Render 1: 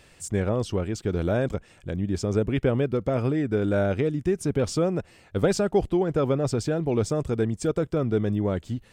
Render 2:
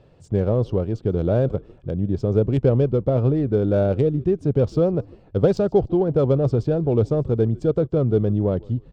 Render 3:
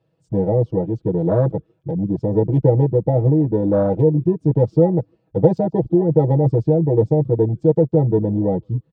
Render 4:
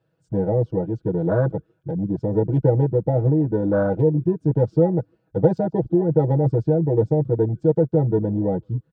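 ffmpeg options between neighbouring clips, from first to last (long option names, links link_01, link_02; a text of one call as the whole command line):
ffmpeg -i in.wav -filter_complex "[0:a]adynamicsmooth=sensitivity=2:basefreq=2000,equalizer=frequency=125:width_type=o:width=1:gain=8,equalizer=frequency=500:width_type=o:width=1:gain=6,equalizer=frequency=2000:width_type=o:width=1:gain=-10,equalizer=frequency=4000:width_type=o:width=1:gain=4,asplit=3[link_01][link_02][link_03];[link_02]adelay=150,afreqshift=-80,volume=-23.5dB[link_04];[link_03]adelay=300,afreqshift=-160,volume=-32.1dB[link_05];[link_01][link_04][link_05]amix=inputs=3:normalize=0" out.wav
ffmpeg -i in.wav -af "highpass=frequency=66:width=0.5412,highpass=frequency=66:width=1.3066,afwtdn=0.1,aecho=1:1:6.2:1" out.wav
ffmpeg -i in.wav -af "equalizer=frequency=1500:width=6.3:gain=14.5,volume=-3dB" out.wav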